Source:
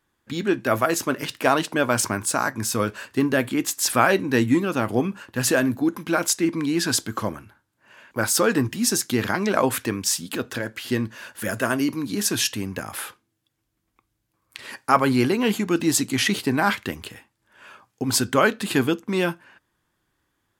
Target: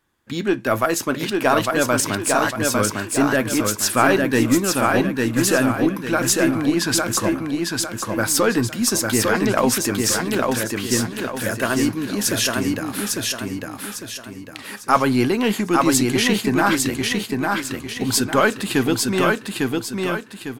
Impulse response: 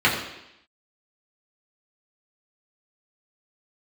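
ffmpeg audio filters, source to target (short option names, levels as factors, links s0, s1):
-filter_complex "[0:a]asplit=2[s0][s1];[s1]aeval=exprs='clip(val(0),-1,0.0631)':c=same,volume=0.316[s2];[s0][s2]amix=inputs=2:normalize=0,aecho=1:1:852|1704|2556|3408|4260:0.708|0.276|0.108|0.042|0.0164"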